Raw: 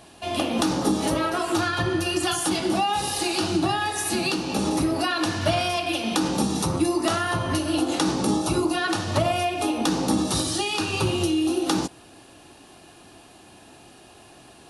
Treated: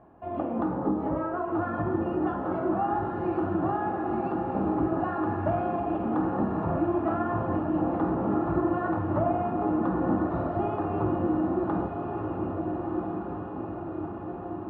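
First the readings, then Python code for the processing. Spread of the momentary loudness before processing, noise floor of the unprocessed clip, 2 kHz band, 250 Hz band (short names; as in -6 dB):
2 LU, -50 dBFS, -12.5 dB, -2.5 dB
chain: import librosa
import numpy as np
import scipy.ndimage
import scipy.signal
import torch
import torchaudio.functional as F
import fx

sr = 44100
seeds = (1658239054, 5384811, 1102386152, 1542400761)

y = scipy.signal.sosfilt(scipy.signal.butter(4, 1300.0, 'lowpass', fs=sr, output='sos'), x)
y = fx.doubler(y, sr, ms=49.0, db=-12)
y = fx.echo_diffused(y, sr, ms=1349, feedback_pct=64, wet_db=-4.0)
y = y * 10.0 ** (-4.5 / 20.0)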